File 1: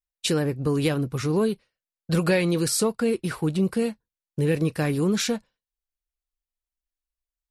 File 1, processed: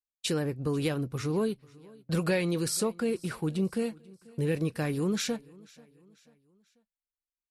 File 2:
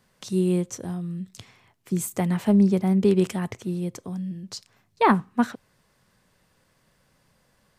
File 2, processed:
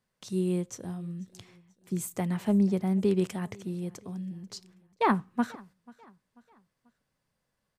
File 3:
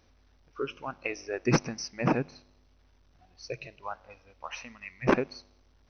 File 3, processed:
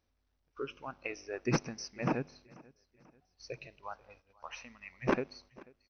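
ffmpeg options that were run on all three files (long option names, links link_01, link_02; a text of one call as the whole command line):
ffmpeg -i in.wav -af "agate=range=-10dB:threshold=-54dB:ratio=16:detection=peak,aecho=1:1:489|978|1467:0.0631|0.0278|0.0122,volume=-6dB" out.wav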